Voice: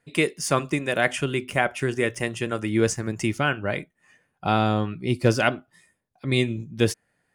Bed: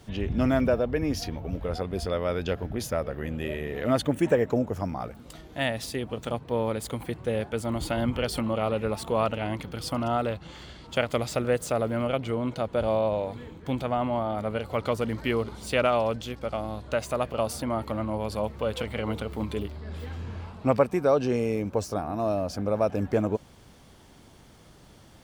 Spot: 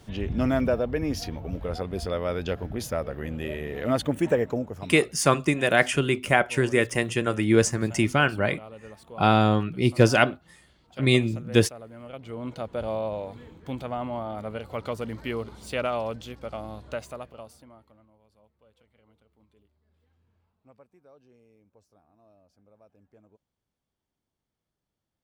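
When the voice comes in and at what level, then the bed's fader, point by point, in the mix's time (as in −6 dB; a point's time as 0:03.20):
4.75 s, +2.0 dB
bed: 0:04.39 −0.5 dB
0:05.38 −16.5 dB
0:11.99 −16.5 dB
0:12.48 −4.5 dB
0:16.90 −4.5 dB
0:18.17 −33.5 dB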